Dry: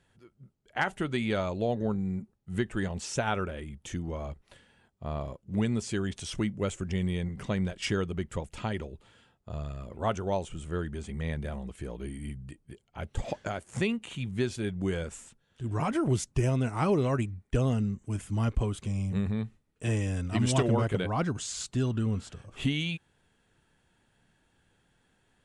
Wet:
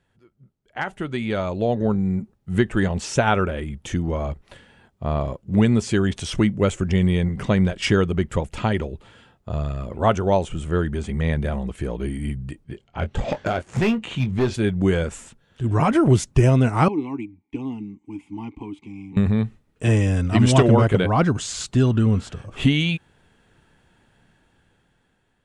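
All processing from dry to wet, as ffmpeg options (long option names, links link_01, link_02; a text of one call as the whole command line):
ffmpeg -i in.wav -filter_complex "[0:a]asettb=1/sr,asplit=3[link_01][link_02][link_03];[link_01]atrim=end=12.644[link_04];[link_02]atrim=start=12.64:end=14.54,asetpts=PTS-STARTPTS,afade=type=in:duration=0.004:curve=qsin,afade=type=out:start_time=1.896:duration=0.004:curve=qsin,lowpass=6200,asoftclip=type=hard:threshold=-27.5dB,asplit=2[link_05][link_06];[link_06]adelay=23,volume=-10dB[link_07];[link_05][link_07]amix=inputs=2:normalize=0,atrim=end_sample=83790[link_08];[link_03]atrim=start=14.536[link_09];[link_04][link_08]acrossfade=duration=0.004:curve1=hsin:curve2=qsin[link_10];[link_10][link_09]acrossfade=duration=0.004:curve1=qsin:curve2=hsin,asettb=1/sr,asplit=3[link_11][link_12][link_13];[link_11]atrim=end=16.884[link_14];[link_12]atrim=start=16.88:end=19.17,asetpts=PTS-STARTPTS,afade=type=in:duration=0.004:curve=qsin,afade=type=out:start_time=2.286:duration=0.004:curve=qsin,asplit=3[link_15][link_16][link_17];[link_15]bandpass=frequency=300:width_type=q:width=8,volume=0dB[link_18];[link_16]bandpass=frequency=870:width_type=q:width=8,volume=-6dB[link_19];[link_17]bandpass=frequency=2240:width_type=q:width=8,volume=-9dB[link_20];[link_18][link_19][link_20]amix=inputs=3:normalize=0,highshelf=frequency=3200:gain=9.5,bandreject=frequency=1300:width=9.6[link_21];[link_13]atrim=start=19.166[link_22];[link_14][link_21]acrossfade=duration=0.004:curve1=hsin:curve2=qsin[link_23];[link_23][link_22]acrossfade=duration=0.004:curve1=qsin:curve2=hsin,highshelf=frequency=4500:gain=-7,dynaudnorm=framelen=640:gausssize=5:maxgain=11.5dB" out.wav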